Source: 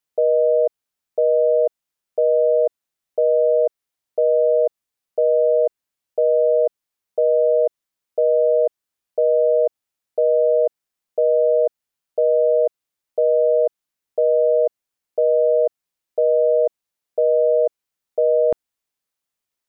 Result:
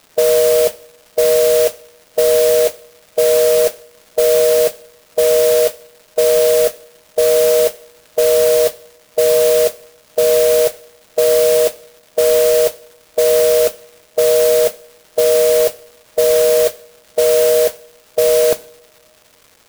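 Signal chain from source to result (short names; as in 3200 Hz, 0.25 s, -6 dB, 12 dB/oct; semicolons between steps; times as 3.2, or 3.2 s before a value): per-bin compression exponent 0.6; crackle 550/s -40 dBFS; modulation noise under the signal 11 dB; two-slope reverb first 0.58 s, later 2.6 s, from -22 dB, DRR 15 dB; gain +4.5 dB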